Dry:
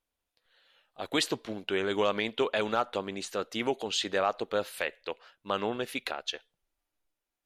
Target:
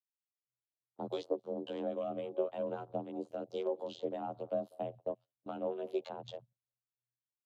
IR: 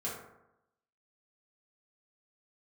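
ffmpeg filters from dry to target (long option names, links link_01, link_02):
-filter_complex "[0:a]afftfilt=real='hypot(re,im)*cos(PI*b)':imag='0':win_size=2048:overlap=0.75,asplit=2[link_01][link_02];[link_02]adelay=179,lowpass=frequency=3300:poles=1,volume=-23.5dB,asplit=2[link_03][link_04];[link_04]adelay=179,lowpass=frequency=3300:poles=1,volume=0.33[link_05];[link_01][link_03][link_05]amix=inputs=3:normalize=0,acrossover=split=230|1700[link_06][link_07][link_08];[link_06]acompressor=threshold=-59dB:ratio=4[link_09];[link_07]acompressor=threshold=-40dB:ratio=4[link_10];[link_08]acompressor=threshold=-51dB:ratio=4[link_11];[link_09][link_10][link_11]amix=inputs=3:normalize=0,lowshelf=frequency=280:gain=6.5,dynaudnorm=framelen=150:gausssize=9:maxgain=10.5dB,acrossover=split=1100[link_12][link_13];[link_12]aeval=exprs='val(0)*(1-0.5/2+0.5/2*cos(2*PI*3.7*n/s))':channel_layout=same[link_14];[link_13]aeval=exprs='val(0)*(1-0.5/2-0.5/2*cos(2*PI*3.7*n/s))':channel_layout=same[link_15];[link_14][link_15]amix=inputs=2:normalize=0,afreqshift=120,afwtdn=0.00708,firequalizer=gain_entry='entry(170,0);entry(1800,-29);entry(3100,-14)':delay=0.05:min_phase=1,agate=range=-22dB:threshold=-52dB:ratio=16:detection=peak,volume=2.5dB"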